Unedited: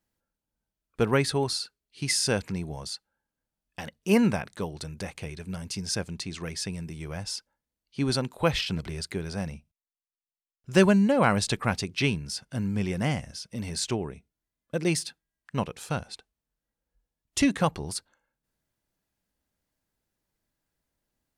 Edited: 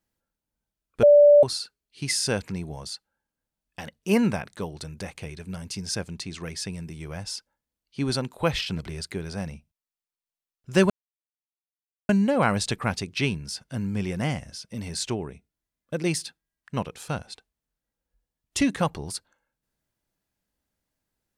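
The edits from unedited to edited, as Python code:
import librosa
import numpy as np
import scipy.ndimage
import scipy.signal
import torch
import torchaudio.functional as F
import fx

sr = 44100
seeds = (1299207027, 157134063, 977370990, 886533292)

y = fx.edit(x, sr, fx.bleep(start_s=1.03, length_s=0.4, hz=584.0, db=-10.0),
    fx.insert_silence(at_s=10.9, length_s=1.19), tone=tone)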